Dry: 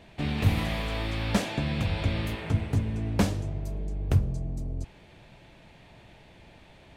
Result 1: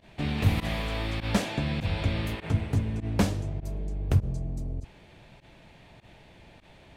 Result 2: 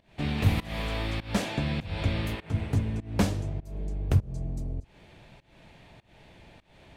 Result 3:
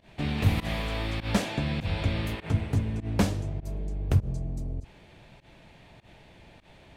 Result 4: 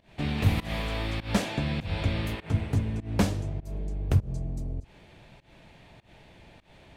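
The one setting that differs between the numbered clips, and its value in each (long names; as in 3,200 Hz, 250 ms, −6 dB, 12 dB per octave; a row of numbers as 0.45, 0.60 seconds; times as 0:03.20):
fake sidechain pumping, release: 69, 285, 104, 184 milliseconds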